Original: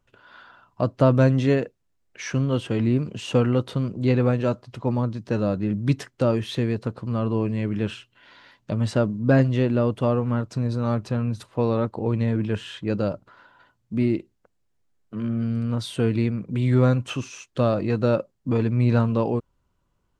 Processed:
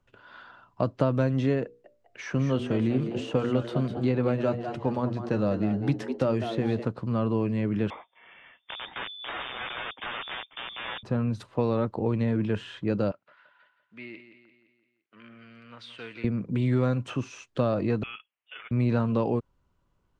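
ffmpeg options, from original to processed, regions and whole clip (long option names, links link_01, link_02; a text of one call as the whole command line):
ffmpeg -i in.wav -filter_complex "[0:a]asettb=1/sr,asplit=3[link_01][link_02][link_03];[link_01]atrim=end=1.644[link_04];[link_02]atrim=start=1.64:end=6.85,asetpts=PTS-STARTPTS,afade=type=in:duration=0.004:curve=qsin,afade=type=out:start_time=5.206:duration=0.004:curve=qsin,bandreject=frequency=60:width_type=h:width=6,bandreject=frequency=120:width_type=h:width=6,bandreject=frequency=180:width_type=h:width=6,bandreject=frequency=240:width_type=h:width=6,bandreject=frequency=300:width_type=h:width=6,bandreject=frequency=360:width_type=h:width=6,bandreject=frequency=420:width_type=h:width=6,bandreject=frequency=480:width_type=h:width=6,asplit=5[link_05][link_06][link_07][link_08][link_09];[link_06]adelay=201,afreqshift=110,volume=-11.5dB[link_10];[link_07]adelay=402,afreqshift=220,volume=-20.1dB[link_11];[link_08]adelay=603,afreqshift=330,volume=-28.8dB[link_12];[link_09]adelay=804,afreqshift=440,volume=-37.4dB[link_13];[link_05][link_10][link_11][link_12][link_13]amix=inputs=5:normalize=0,atrim=end_sample=229761[link_14];[link_03]atrim=start=6.846[link_15];[link_04][link_14]acrossfade=duration=0.004:curve1=hsin:curve2=qsin[link_16];[link_16][link_15]acrossfade=duration=0.004:curve1=qsin:curve2=hsin,asettb=1/sr,asplit=3[link_17][link_18][link_19];[link_17]atrim=end=7.904[link_20];[link_18]atrim=start=7.9:end=11.03,asetpts=PTS-STARTPTS,afade=type=in:duration=0.004:curve=qsin,afade=type=out:start_time=3.126:duration=0.004:curve=qsin,highpass=frequency=150:width=0.5412,highpass=frequency=150:width=1.3066,aeval=exprs='(mod(12.6*val(0)+1,2)-1)/12.6':channel_layout=same,lowpass=frequency=3100:width_type=q:width=0.5098,lowpass=frequency=3100:width_type=q:width=0.6013,lowpass=frequency=3100:width_type=q:width=0.9,lowpass=frequency=3100:width_type=q:width=2.563,afreqshift=-3700[link_21];[link_19]atrim=start=11.026[link_22];[link_20][link_21]acrossfade=duration=0.004:curve1=hsin:curve2=qsin[link_23];[link_23][link_22]acrossfade=duration=0.004:curve1=qsin:curve2=hsin,asettb=1/sr,asplit=3[link_24][link_25][link_26];[link_24]atrim=end=13.114[link_27];[link_25]atrim=start=13.11:end=16.24,asetpts=PTS-STARTPTS,afade=type=in:duration=0.004:curve=qsin,afade=type=out:start_time=3.126:duration=0.004:curve=qsin,bandpass=frequency=2300:width_type=q:width=1.7,aecho=1:1:171|342|513|684|855:0.266|0.136|0.0692|0.0353|0.018,atrim=end_sample=138033[link_28];[link_26]atrim=start=16.236[link_29];[link_27][link_28]acrossfade=duration=0.004:curve1=hsin:curve2=qsin[link_30];[link_30][link_29]acrossfade=duration=0.004:curve1=qsin:curve2=hsin,asettb=1/sr,asplit=3[link_31][link_32][link_33];[link_31]atrim=end=18.034[link_34];[link_32]atrim=start=18.03:end=18.71,asetpts=PTS-STARTPTS,afade=type=in:duration=0.004:curve=qsin,afade=type=out:start_time=0.676:duration=0.004:curve=qsin,highpass=frequency=980:width=0.5412,highpass=frequency=980:width=1.3066,lowpass=frequency=3300:width_type=q:width=0.5098,lowpass=frequency=3300:width_type=q:width=0.6013,lowpass=frequency=3300:width_type=q:width=0.9,lowpass=frequency=3300:width_type=q:width=2.563,afreqshift=-3900[link_35];[link_33]atrim=start=18.706[link_36];[link_34][link_35]acrossfade=duration=0.004:curve1=hsin:curve2=qsin[link_37];[link_37][link_36]acrossfade=duration=0.004:curve1=qsin:curve2=hsin,highshelf=frequency=6900:gain=-10.5,acrossover=split=130|1800[link_38][link_39][link_40];[link_38]acompressor=threshold=-36dB:ratio=4[link_41];[link_39]acompressor=threshold=-22dB:ratio=4[link_42];[link_40]acompressor=threshold=-44dB:ratio=4[link_43];[link_41][link_42][link_43]amix=inputs=3:normalize=0" out.wav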